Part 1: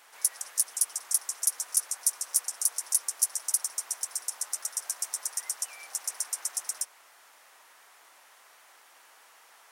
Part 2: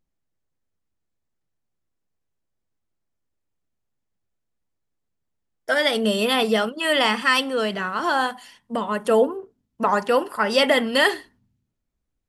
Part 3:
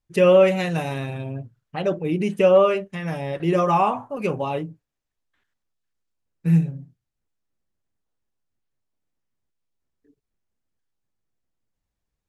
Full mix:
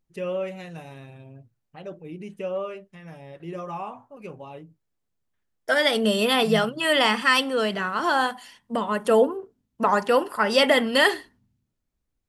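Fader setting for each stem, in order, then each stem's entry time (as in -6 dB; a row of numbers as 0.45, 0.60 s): off, -0.5 dB, -14.5 dB; off, 0.00 s, 0.00 s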